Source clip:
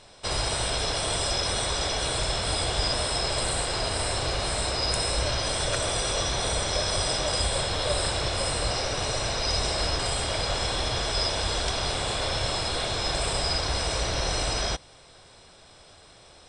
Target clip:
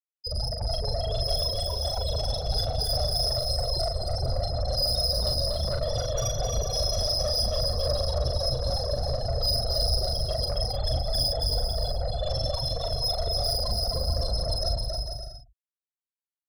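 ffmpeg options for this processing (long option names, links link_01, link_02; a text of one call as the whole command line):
ffmpeg -i in.wav -filter_complex "[0:a]bandreject=frequency=50:width_type=h:width=6,bandreject=frequency=100:width_type=h:width=6,bandreject=frequency=150:width_type=h:width=6,bandreject=frequency=200:width_type=h:width=6,bandreject=frequency=250:width_type=h:width=6,bandreject=frequency=300:width_type=h:width=6,bandreject=frequency=350:width_type=h:width=6,bandreject=frequency=400:width_type=h:width=6,bandreject=frequency=450:width_type=h:width=6,afftfilt=real='re*gte(hypot(re,im),0.141)':imag='im*gte(hypot(re,im),0.141)':win_size=1024:overlap=0.75,equalizer=frequency=5200:width_type=o:width=0.35:gain=3,acrossover=split=160|4600[link_01][link_02][link_03];[link_02]alimiter=level_in=4.5dB:limit=-24dB:level=0:latency=1:release=53,volume=-4.5dB[link_04];[link_01][link_04][link_03]amix=inputs=3:normalize=0,asoftclip=type=tanh:threshold=-30.5dB,asplit=2[link_05][link_06];[link_06]adelay=40,volume=-4.5dB[link_07];[link_05][link_07]amix=inputs=2:normalize=0,aecho=1:1:270|445.5|559.6|633.7|681.9:0.631|0.398|0.251|0.158|0.1,volume=6dB" out.wav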